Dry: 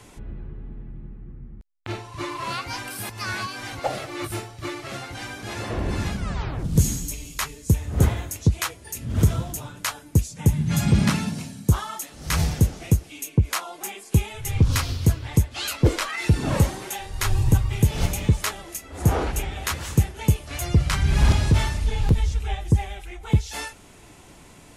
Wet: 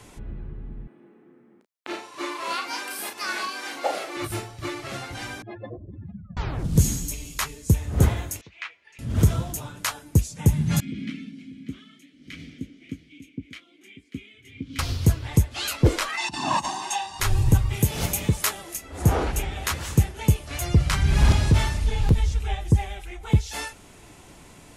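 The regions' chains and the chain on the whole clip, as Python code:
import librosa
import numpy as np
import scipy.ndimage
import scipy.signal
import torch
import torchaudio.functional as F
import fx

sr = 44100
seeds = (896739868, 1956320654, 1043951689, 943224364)

y = fx.chain(x, sr, fx.highpass(hz=280.0, slope=24),
    fx.doubler(ms=35.0, db=-6), at=(0.87, 4.17))
y = fx.chain(y, sr, fx.spec_expand(power=3.0),
    fx.cabinet(low_hz=200.0, low_slope=12, high_hz=3300.0, hz=(210.0, 380.0, 570.0, 920.0, 1500.0, 2400.0), db=(-4, -4, 4, -6, -9, -6)), at=(5.42, 6.37))
y = fx.chain(y, sr, fx.bandpass_q(hz=2300.0, q=2.5),
    fx.air_absorb(metres=120.0), at=(8.41, 8.99))
y = fx.chain(y, sr, fx.vowel_filter(vowel='i'),
    fx.echo_single(ms=591, db=-13.5), at=(10.8, 14.79))
y = fx.chain(y, sr, fx.over_compress(threshold_db=-19.0, ratio=-0.5),
    fx.cabinet(low_hz=390.0, low_slope=12, high_hz=8200.0, hz=(540.0, 1000.0, 1900.0), db=(-10, 6, -10)),
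    fx.comb(ms=1.1, depth=0.93), at=(16.17, 17.2))
y = fx.chain(y, sr, fx.highpass(hz=120.0, slope=6),
    fx.high_shelf(hz=10000.0, db=11.5), at=(17.74, 18.75))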